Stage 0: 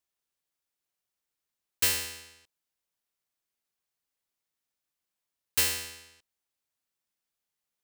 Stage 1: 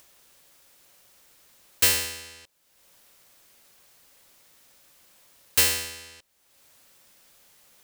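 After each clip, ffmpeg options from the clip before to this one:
-filter_complex "[0:a]asplit=2[s0][s1];[s1]acompressor=mode=upward:threshold=0.0178:ratio=2.5,volume=1.12[s2];[s0][s2]amix=inputs=2:normalize=0,equalizer=f=550:w=7.6:g=6,volume=0.891"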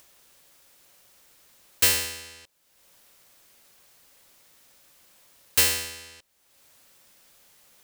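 -af anull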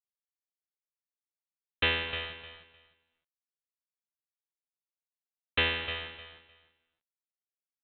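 -af "aresample=8000,acrusher=bits=6:mix=0:aa=0.000001,aresample=44100,aecho=1:1:305|610|915:0.316|0.0632|0.0126"

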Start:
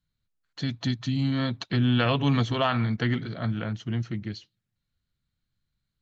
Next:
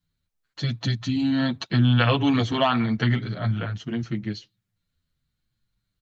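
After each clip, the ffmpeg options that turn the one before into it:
-filter_complex "[0:a]asplit=2[s0][s1];[s1]adelay=8.1,afreqshift=-0.83[s2];[s0][s2]amix=inputs=2:normalize=1,volume=2"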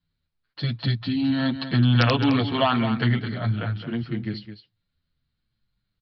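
-af "aresample=11025,aeval=exprs='(mod(2.37*val(0)+1,2)-1)/2.37':c=same,aresample=44100,aecho=1:1:213:0.299"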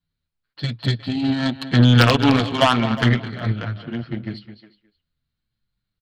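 -filter_complex "[0:a]aeval=exprs='0.473*(cos(1*acos(clip(val(0)/0.473,-1,1)))-cos(1*PI/2))+0.0422*(cos(7*acos(clip(val(0)/0.473,-1,1)))-cos(7*PI/2))':c=same,asplit=2[s0][s1];[s1]adelay=360,highpass=300,lowpass=3400,asoftclip=type=hard:threshold=0.178,volume=0.178[s2];[s0][s2]amix=inputs=2:normalize=0,volume=2"

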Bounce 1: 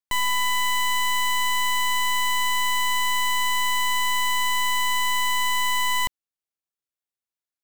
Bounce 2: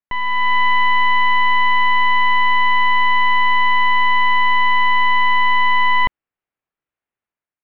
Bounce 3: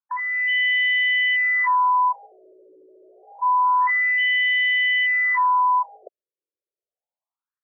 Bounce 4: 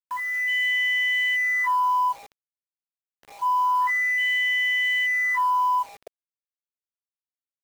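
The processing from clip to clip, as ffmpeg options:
-af "lowpass=f=2500:w=0.5412,lowpass=f=2500:w=1.3066,dynaudnorm=f=110:g=7:m=2.37,volume=1.33"
-af "afftfilt=real='re*between(b*sr/1024,420*pow(2700/420,0.5+0.5*sin(2*PI*0.27*pts/sr))/1.41,420*pow(2700/420,0.5+0.5*sin(2*PI*0.27*pts/sr))*1.41)':imag='im*between(b*sr/1024,420*pow(2700/420,0.5+0.5*sin(2*PI*0.27*pts/sr))/1.41,420*pow(2700/420,0.5+0.5*sin(2*PI*0.27*pts/sr))*1.41)':win_size=1024:overlap=0.75"
-filter_complex "[0:a]asplit=2[s0][s1];[s1]asoftclip=type=tanh:threshold=0.0422,volume=0.266[s2];[s0][s2]amix=inputs=2:normalize=0,acrusher=bits=6:mix=0:aa=0.000001,volume=0.631"

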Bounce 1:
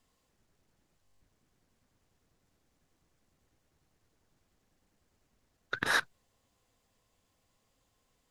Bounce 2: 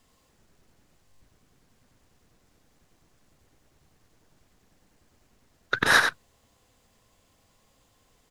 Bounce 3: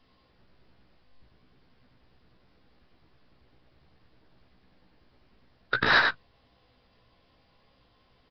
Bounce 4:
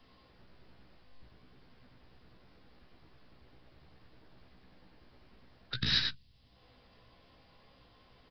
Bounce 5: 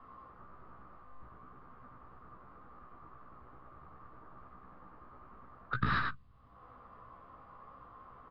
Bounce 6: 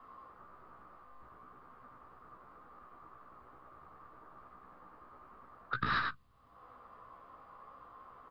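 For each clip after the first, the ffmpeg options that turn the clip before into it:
-filter_complex "[0:a]asplit=2[s0][s1];[s1]volume=7.94,asoftclip=hard,volume=0.126,volume=0.355[s2];[s0][s2]amix=inputs=2:normalize=0,asplit=2[s3][s4];[s4]adelay=93.29,volume=0.501,highshelf=f=4000:g=-2.1[s5];[s3][s5]amix=inputs=2:normalize=0,volume=2.11"
-filter_complex "[0:a]asplit=2[s0][s1];[s1]adelay=16,volume=0.596[s2];[s0][s2]amix=inputs=2:normalize=0,aresample=11025,asoftclip=type=tanh:threshold=0.2,aresample=44100"
-filter_complex "[0:a]acrossover=split=210|3000[s0][s1][s2];[s1]acompressor=threshold=0.00126:ratio=6[s3];[s0][s3][s2]amix=inputs=3:normalize=0,volume=1.33"
-af "lowpass=f=1200:t=q:w=10,volume=1.33"
-af "bass=f=250:g=-8,treble=f=4000:g=6"

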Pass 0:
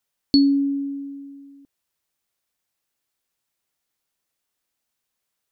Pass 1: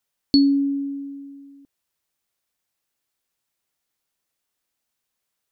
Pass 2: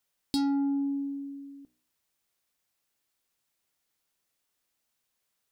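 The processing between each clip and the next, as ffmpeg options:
-af anull
-af "asoftclip=type=tanh:threshold=0.0841,bandreject=f=61.49:t=h:w=4,bandreject=f=122.98:t=h:w=4,bandreject=f=184.47:t=h:w=4,bandreject=f=245.96:t=h:w=4,bandreject=f=307.45:t=h:w=4,bandreject=f=368.94:t=h:w=4,bandreject=f=430.43:t=h:w=4,bandreject=f=491.92:t=h:w=4,bandreject=f=553.41:t=h:w=4,bandreject=f=614.9:t=h:w=4,bandreject=f=676.39:t=h:w=4,bandreject=f=737.88:t=h:w=4,bandreject=f=799.37:t=h:w=4,bandreject=f=860.86:t=h:w=4,bandreject=f=922.35:t=h:w=4,bandreject=f=983.84:t=h:w=4,bandreject=f=1045.33:t=h:w=4,bandreject=f=1106.82:t=h:w=4,bandreject=f=1168.31:t=h:w=4,bandreject=f=1229.8:t=h:w=4,bandreject=f=1291.29:t=h:w=4,bandreject=f=1352.78:t=h:w=4,bandreject=f=1414.27:t=h:w=4,bandreject=f=1475.76:t=h:w=4,bandreject=f=1537.25:t=h:w=4,bandreject=f=1598.74:t=h:w=4,bandreject=f=1660.23:t=h:w=4,bandreject=f=1721.72:t=h:w=4,bandreject=f=1783.21:t=h:w=4,bandreject=f=1844.7:t=h:w=4,acompressor=threshold=0.0501:ratio=6"

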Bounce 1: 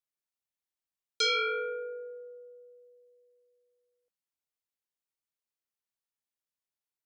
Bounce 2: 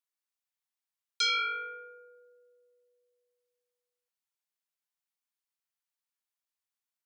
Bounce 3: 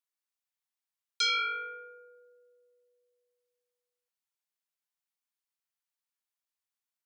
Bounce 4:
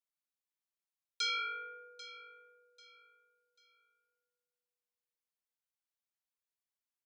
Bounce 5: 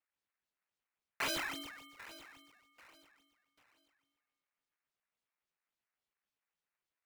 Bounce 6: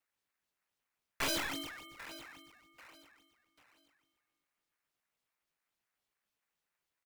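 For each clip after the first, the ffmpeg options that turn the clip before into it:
-af "highpass=f=730:w=0.5412,highpass=f=730:w=1.3066"
-af anull
-af "aecho=1:1:791|1582|2373:0.158|0.0491|0.0152,volume=0.473"
-af "acrusher=samples=17:mix=1:aa=0.000001:lfo=1:lforange=27.2:lforate=3.6,aeval=exprs='val(0)*sin(2*PI*1700*n/s)':c=same,volume=1.19"
-filter_complex "[0:a]acrossover=split=410|620|4000[s0][s1][s2][s3];[s0]aecho=1:1:275|550|825|1100|1375:0.224|0.11|0.0538|0.0263|0.0129[s4];[s2]aeval=exprs='clip(val(0),-1,0.00316)':c=same[s5];[s4][s1][s5][s3]amix=inputs=4:normalize=0,volume=1.58"

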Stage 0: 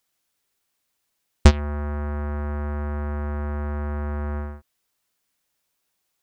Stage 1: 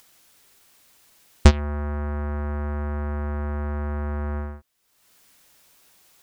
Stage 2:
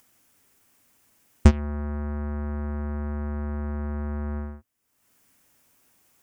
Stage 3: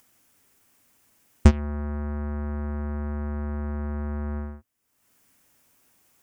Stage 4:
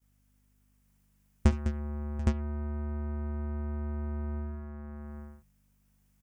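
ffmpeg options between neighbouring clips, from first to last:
-af "acompressor=mode=upward:threshold=0.00891:ratio=2.5"
-af "equalizer=f=100:t=o:w=0.67:g=7,equalizer=f=250:t=o:w=0.67:g=8,equalizer=f=4000:t=o:w=0.67:g=-8,volume=0.531"
-af anull
-af "aeval=exprs='val(0)+0.00251*(sin(2*PI*50*n/s)+sin(2*PI*2*50*n/s)/2+sin(2*PI*3*50*n/s)/3+sin(2*PI*4*50*n/s)/4+sin(2*PI*5*50*n/s)/5)':c=same,agate=range=0.0224:threshold=0.00447:ratio=3:detection=peak,aecho=1:1:52|69|204|737|814:0.126|0.112|0.299|0.106|0.631,volume=0.376"

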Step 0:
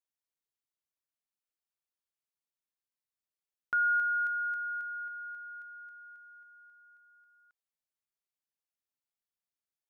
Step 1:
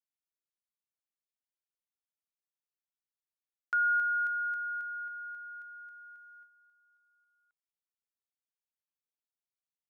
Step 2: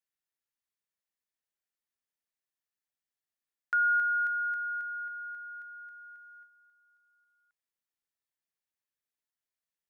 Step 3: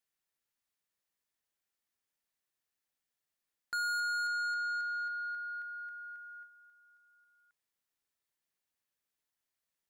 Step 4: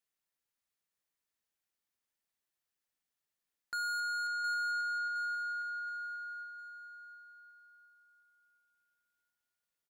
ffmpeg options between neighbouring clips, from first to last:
-af "agate=range=0.316:threshold=0.00158:ratio=16:detection=peak"
-af "equalizer=f=1800:t=o:w=0.37:g=6.5"
-af "asoftclip=type=tanh:threshold=0.0158,volume=1.5"
-af "aecho=1:1:714|1428|2142|2856:0.299|0.107|0.0387|0.0139,volume=0.794"

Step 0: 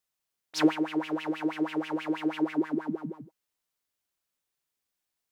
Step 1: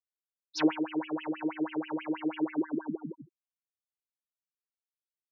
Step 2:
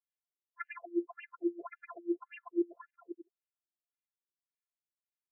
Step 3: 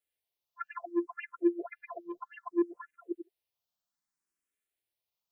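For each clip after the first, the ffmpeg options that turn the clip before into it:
-filter_complex "[0:a]afftfilt=real='re*gte(hypot(re,im),0.0251)':imag='im*gte(hypot(re,im),0.0251)':win_size=1024:overlap=0.75,acrossover=split=150[s0][s1];[s0]alimiter=level_in=11.2:limit=0.0631:level=0:latency=1:release=485,volume=0.0891[s2];[s2][s1]amix=inputs=2:normalize=0,volume=0.75"
-af "afftfilt=real='hypot(re,im)*cos(PI*b)':imag='0':win_size=512:overlap=0.75,afftfilt=real='re*between(b*sr/1024,300*pow(2200/300,0.5+0.5*sin(2*PI*1.8*pts/sr))/1.41,300*pow(2200/300,0.5+0.5*sin(2*PI*1.8*pts/sr))*1.41)':imag='im*between(b*sr/1024,300*pow(2200/300,0.5+0.5*sin(2*PI*1.8*pts/sr))/1.41,300*pow(2200/300,0.5+0.5*sin(2*PI*1.8*pts/sr))*1.41)':win_size=1024:overlap=0.75,volume=1.12"
-filter_complex "[0:a]acrossover=split=340[s0][s1];[s0]asoftclip=type=tanh:threshold=0.0133[s2];[s2][s1]amix=inputs=2:normalize=0,asplit=2[s3][s4];[s4]afreqshift=0.64[s5];[s3][s5]amix=inputs=2:normalize=1,volume=2.66"

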